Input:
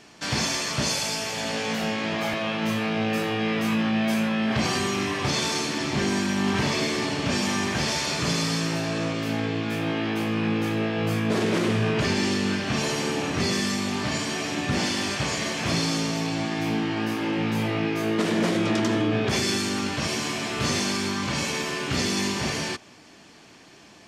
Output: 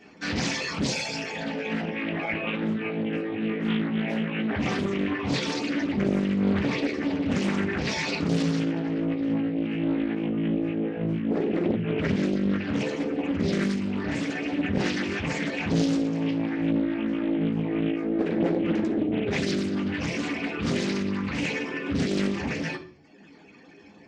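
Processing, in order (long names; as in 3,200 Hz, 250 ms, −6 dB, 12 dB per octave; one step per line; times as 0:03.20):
spectral envelope exaggerated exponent 2
reverb reduction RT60 0.92 s
convolution reverb RT60 0.50 s, pre-delay 3 ms, DRR −3.5 dB
highs frequency-modulated by the lows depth 0.55 ms
level −6 dB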